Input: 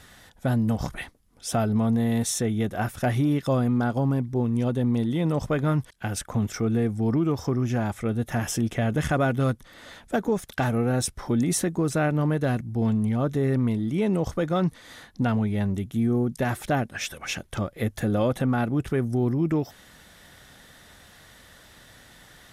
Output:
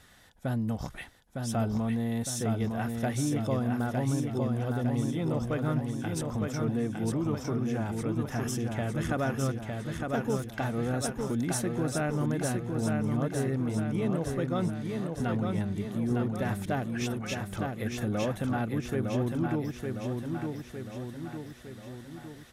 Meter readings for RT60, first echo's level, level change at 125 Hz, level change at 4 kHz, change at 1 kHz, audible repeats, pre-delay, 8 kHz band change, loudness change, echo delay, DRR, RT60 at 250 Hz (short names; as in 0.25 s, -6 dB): none, -4.0 dB, -5.0 dB, -5.0 dB, -5.0 dB, 6, none, -5.0 dB, -5.5 dB, 0.908 s, none, none